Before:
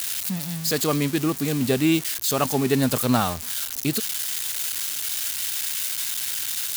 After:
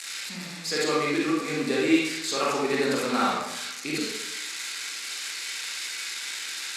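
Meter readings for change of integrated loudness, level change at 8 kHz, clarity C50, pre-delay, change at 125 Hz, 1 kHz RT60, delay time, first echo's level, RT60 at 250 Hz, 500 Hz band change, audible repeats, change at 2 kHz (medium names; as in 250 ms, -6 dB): -4.0 dB, -7.0 dB, -1.5 dB, 32 ms, -14.0 dB, 0.90 s, no echo, no echo, 1.0 s, -1.0 dB, no echo, +3.0 dB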